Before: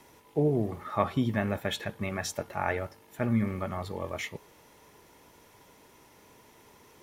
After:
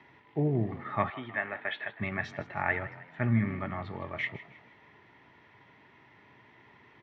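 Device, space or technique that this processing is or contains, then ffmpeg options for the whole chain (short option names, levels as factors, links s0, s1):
frequency-shifting delay pedal into a guitar cabinet: -filter_complex "[0:a]asplit=5[s0][s1][s2][s3][s4];[s1]adelay=158,afreqshift=37,volume=0.158[s5];[s2]adelay=316,afreqshift=74,volume=0.0668[s6];[s3]adelay=474,afreqshift=111,volume=0.0279[s7];[s4]adelay=632,afreqshift=148,volume=0.0117[s8];[s0][s5][s6][s7][s8]amix=inputs=5:normalize=0,highpass=87,equalizer=f=120:t=q:w=4:g=7,equalizer=f=500:t=q:w=4:g=-9,equalizer=f=1900:t=q:w=4:g=10,lowpass=f=3400:w=0.5412,lowpass=f=3400:w=1.3066,asettb=1/sr,asplit=3[s9][s10][s11];[s9]atrim=end=1.104[s12];[s10]atrim=start=1.1:end=2,asetpts=PTS-STARTPTS,afade=t=in:d=0.004:c=qsin,afade=t=out:st=0.896:d=0.004:c=qsin,acrossover=split=410 3900:gain=0.0891 1 0.0891[s13][s14][s15];[s13][s14][s15]amix=inputs=3:normalize=0[s16];[s11]atrim=start=1.996[s17];[s12][s16]acrossfade=d=0.004:c1=hsin:c2=qsin[s18];[s18][s17]acrossfade=d=0.004:c1=qsin:c2=hsin,volume=0.841"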